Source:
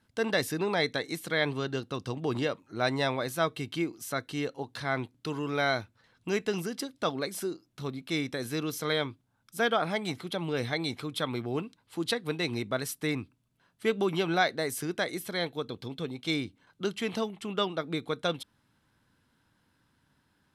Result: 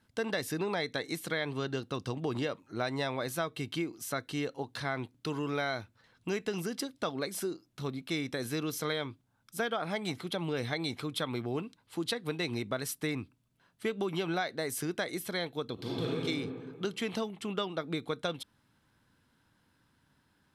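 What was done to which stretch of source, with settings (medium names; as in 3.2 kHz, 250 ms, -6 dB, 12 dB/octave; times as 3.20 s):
15.74–16.21 s: reverb throw, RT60 1.8 s, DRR -6.5 dB
whole clip: compression, threshold -29 dBFS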